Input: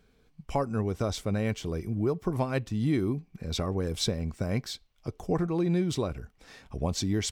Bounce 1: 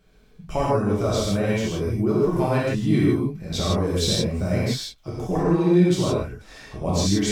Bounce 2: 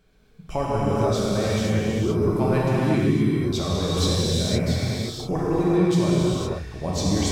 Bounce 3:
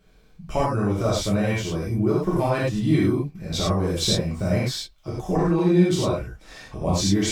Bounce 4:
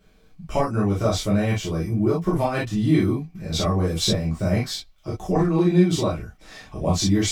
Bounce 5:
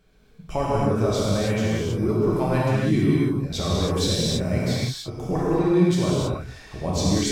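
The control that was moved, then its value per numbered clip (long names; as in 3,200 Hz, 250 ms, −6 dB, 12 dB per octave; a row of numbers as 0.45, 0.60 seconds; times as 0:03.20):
reverb whose tail is shaped and stops, gate: 190, 540, 130, 80, 350 milliseconds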